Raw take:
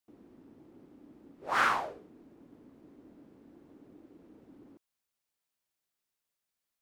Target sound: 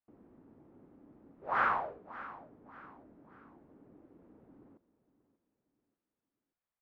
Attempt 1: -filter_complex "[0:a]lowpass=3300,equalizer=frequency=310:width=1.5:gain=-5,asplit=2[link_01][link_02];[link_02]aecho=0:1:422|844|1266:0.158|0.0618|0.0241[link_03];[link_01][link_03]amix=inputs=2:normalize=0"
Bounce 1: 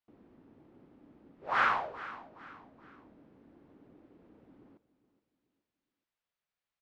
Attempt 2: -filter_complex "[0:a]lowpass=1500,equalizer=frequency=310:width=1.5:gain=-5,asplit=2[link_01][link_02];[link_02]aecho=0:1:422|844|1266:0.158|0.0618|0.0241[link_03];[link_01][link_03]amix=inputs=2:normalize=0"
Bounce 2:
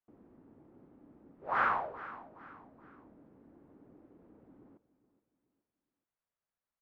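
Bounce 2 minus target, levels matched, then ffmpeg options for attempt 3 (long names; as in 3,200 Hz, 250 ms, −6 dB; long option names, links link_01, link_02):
echo 163 ms early
-filter_complex "[0:a]lowpass=1500,equalizer=frequency=310:width=1.5:gain=-5,asplit=2[link_01][link_02];[link_02]aecho=0:1:585|1170|1755:0.158|0.0618|0.0241[link_03];[link_01][link_03]amix=inputs=2:normalize=0"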